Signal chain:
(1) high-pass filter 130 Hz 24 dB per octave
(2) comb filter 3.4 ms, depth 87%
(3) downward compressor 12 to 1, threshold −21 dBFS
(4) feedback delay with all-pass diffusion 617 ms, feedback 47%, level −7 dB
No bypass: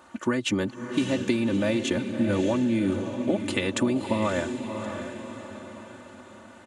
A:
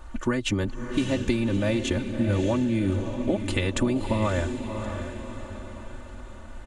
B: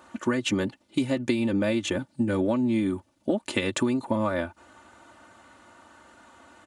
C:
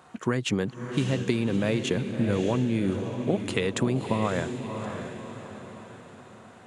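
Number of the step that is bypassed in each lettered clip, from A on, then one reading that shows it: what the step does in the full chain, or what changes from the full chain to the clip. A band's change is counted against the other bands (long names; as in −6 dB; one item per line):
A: 1, 125 Hz band +6.5 dB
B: 4, echo-to-direct ratio −6.0 dB to none audible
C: 2, 125 Hz band +6.5 dB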